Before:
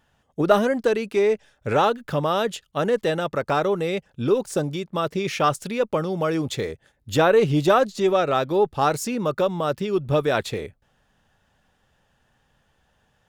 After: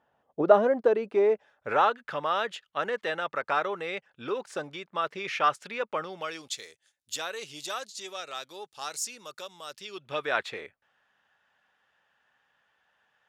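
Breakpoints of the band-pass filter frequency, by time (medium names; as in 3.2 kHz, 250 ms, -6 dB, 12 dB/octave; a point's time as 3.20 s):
band-pass filter, Q 0.97
1.21 s 660 Hz
2.01 s 1.7 kHz
6.03 s 1.7 kHz
6.58 s 6.8 kHz
9.70 s 6.8 kHz
10.32 s 1.7 kHz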